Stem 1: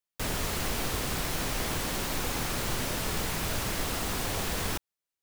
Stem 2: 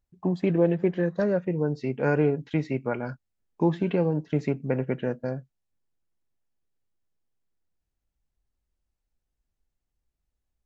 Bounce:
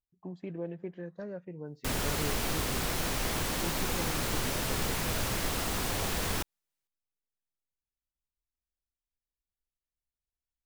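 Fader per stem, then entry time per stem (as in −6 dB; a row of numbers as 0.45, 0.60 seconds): −0.5, −16.0 decibels; 1.65, 0.00 seconds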